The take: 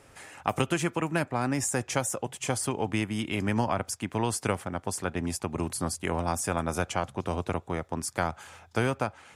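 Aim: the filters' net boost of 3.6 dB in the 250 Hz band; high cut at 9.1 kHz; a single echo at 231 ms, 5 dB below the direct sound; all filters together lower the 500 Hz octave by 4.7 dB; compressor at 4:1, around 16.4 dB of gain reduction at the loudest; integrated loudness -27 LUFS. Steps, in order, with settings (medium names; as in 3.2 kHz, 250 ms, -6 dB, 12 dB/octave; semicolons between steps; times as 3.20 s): low-pass 9.1 kHz; peaking EQ 250 Hz +7 dB; peaking EQ 500 Hz -9 dB; compression 4:1, threshold -42 dBFS; delay 231 ms -5 dB; trim +15.5 dB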